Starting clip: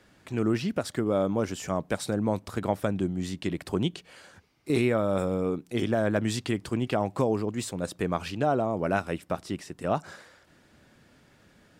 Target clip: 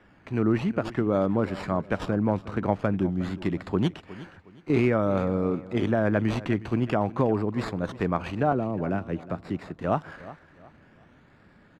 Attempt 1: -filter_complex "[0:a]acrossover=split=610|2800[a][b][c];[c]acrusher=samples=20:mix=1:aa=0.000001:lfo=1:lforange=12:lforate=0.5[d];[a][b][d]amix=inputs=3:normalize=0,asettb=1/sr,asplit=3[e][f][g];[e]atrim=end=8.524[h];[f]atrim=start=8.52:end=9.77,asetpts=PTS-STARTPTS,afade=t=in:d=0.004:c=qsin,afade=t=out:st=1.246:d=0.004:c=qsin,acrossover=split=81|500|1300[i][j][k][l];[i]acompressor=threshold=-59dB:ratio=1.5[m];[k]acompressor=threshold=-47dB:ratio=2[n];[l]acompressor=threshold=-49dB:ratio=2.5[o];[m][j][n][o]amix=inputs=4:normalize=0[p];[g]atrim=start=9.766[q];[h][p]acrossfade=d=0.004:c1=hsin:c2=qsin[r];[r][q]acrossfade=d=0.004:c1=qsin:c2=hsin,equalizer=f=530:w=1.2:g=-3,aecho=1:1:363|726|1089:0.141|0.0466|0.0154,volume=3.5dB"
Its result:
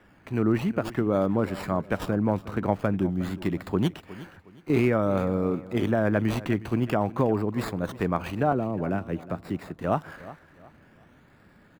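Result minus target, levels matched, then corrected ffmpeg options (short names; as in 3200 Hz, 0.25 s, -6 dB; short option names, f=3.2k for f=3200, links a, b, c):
8000 Hz band +4.5 dB
-filter_complex "[0:a]acrossover=split=610|2800[a][b][c];[c]acrusher=samples=20:mix=1:aa=0.000001:lfo=1:lforange=12:lforate=0.5[d];[a][b][d]amix=inputs=3:normalize=0,asettb=1/sr,asplit=3[e][f][g];[e]atrim=end=8.524[h];[f]atrim=start=8.52:end=9.77,asetpts=PTS-STARTPTS,afade=t=in:d=0.004:c=qsin,afade=t=out:st=1.246:d=0.004:c=qsin,acrossover=split=81|500|1300[i][j][k][l];[i]acompressor=threshold=-59dB:ratio=1.5[m];[k]acompressor=threshold=-47dB:ratio=2[n];[l]acompressor=threshold=-49dB:ratio=2.5[o];[m][j][n][o]amix=inputs=4:normalize=0[p];[g]atrim=start=9.766[q];[h][p]acrossfade=d=0.004:c1=hsin:c2=qsin[r];[r][q]acrossfade=d=0.004:c1=qsin:c2=hsin,lowpass=6.4k,equalizer=f=530:w=1.2:g=-3,aecho=1:1:363|726|1089:0.141|0.0466|0.0154,volume=3.5dB"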